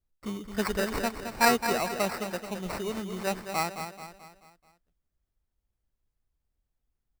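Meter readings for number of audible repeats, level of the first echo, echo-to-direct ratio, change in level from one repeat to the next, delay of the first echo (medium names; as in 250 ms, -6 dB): 4, -8.5 dB, -7.5 dB, -6.5 dB, 217 ms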